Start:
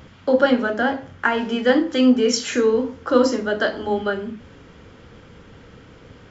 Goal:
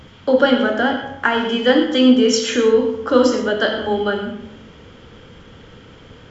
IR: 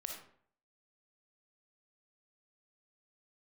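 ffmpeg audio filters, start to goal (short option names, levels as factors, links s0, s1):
-filter_complex "[0:a]asplit=2[s0][s1];[s1]equalizer=f=3200:w=5:g=10.5[s2];[1:a]atrim=start_sample=2205,asetrate=30870,aresample=44100[s3];[s2][s3]afir=irnorm=-1:irlink=0,volume=1.12[s4];[s0][s4]amix=inputs=2:normalize=0,volume=0.668"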